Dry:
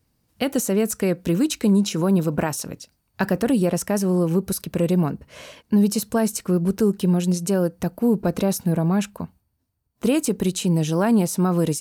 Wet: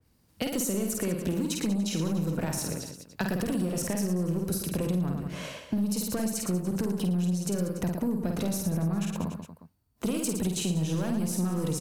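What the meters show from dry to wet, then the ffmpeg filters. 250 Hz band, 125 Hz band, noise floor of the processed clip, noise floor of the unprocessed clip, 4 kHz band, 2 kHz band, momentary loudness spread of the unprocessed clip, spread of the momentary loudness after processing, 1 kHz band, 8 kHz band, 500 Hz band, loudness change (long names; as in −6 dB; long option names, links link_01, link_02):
−8.0 dB, −6.5 dB, −65 dBFS, −72 dBFS, −5.0 dB, −7.5 dB, 8 LU, 6 LU, −10.5 dB, −4.5 dB, −11.0 dB, −8.0 dB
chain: -filter_complex "[0:a]asoftclip=type=tanh:threshold=-16dB,acrossover=split=180|3000[link_01][link_02][link_03];[link_02]acompressor=threshold=-28dB:ratio=6[link_04];[link_01][link_04][link_03]amix=inputs=3:normalize=0,asplit=2[link_05][link_06];[link_06]aecho=0:1:50|112.5|190.6|288.3|410.4:0.631|0.398|0.251|0.158|0.1[link_07];[link_05][link_07]amix=inputs=2:normalize=0,acompressor=threshold=-25dB:ratio=6,adynamicequalizer=threshold=0.00447:dfrequency=2500:dqfactor=0.7:tfrequency=2500:tqfactor=0.7:attack=5:release=100:ratio=0.375:range=1.5:mode=cutabove:tftype=highshelf"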